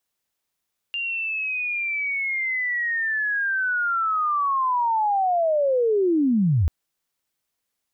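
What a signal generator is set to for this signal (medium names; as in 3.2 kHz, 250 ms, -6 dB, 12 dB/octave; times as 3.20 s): sweep linear 2.8 kHz -> 70 Hz -24.5 dBFS -> -16 dBFS 5.74 s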